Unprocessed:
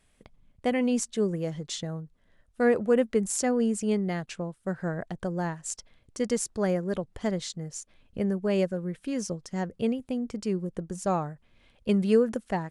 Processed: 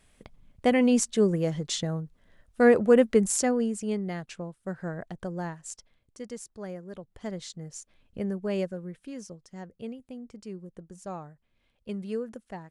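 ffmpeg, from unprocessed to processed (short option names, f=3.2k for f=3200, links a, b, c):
-af "volume=12.5dB,afade=t=out:st=3.23:d=0.47:silence=0.421697,afade=t=out:st=5.4:d=0.86:silence=0.375837,afade=t=in:st=6.93:d=0.75:silence=0.375837,afade=t=out:st=8.53:d=0.77:silence=0.421697"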